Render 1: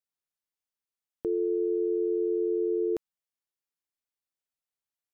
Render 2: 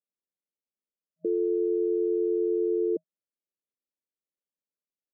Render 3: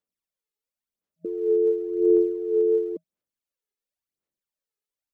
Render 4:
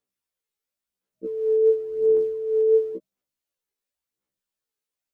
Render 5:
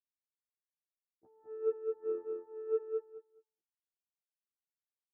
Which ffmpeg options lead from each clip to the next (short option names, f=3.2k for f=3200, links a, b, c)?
-af "afftfilt=real='re*between(b*sr/4096,170,630)':imag='im*between(b*sr/4096,170,630)':win_size=4096:overlap=0.75,volume=1.5dB"
-af "aphaser=in_gain=1:out_gain=1:delay=2.4:decay=0.67:speed=0.94:type=sinusoidal"
-af "afftfilt=real='re*1.73*eq(mod(b,3),0)':imag='im*1.73*eq(mod(b,3),0)':win_size=2048:overlap=0.75,volume=5dB"
-filter_complex "[0:a]aeval=exprs='0.282*(cos(1*acos(clip(val(0)/0.282,-1,1)))-cos(1*PI/2))+0.112*(cos(3*acos(clip(val(0)/0.282,-1,1)))-cos(3*PI/2))+0.00631*(cos(5*acos(clip(val(0)/0.282,-1,1)))-cos(5*PI/2))+0.00891*(cos(8*acos(clip(val(0)/0.282,-1,1)))-cos(8*PI/2))':c=same,bandpass=f=360:t=q:w=4.5:csg=0,asplit=2[a][b];[b]aecho=0:1:210|420|630:0.631|0.114|0.0204[c];[a][c]amix=inputs=2:normalize=0,volume=-4dB"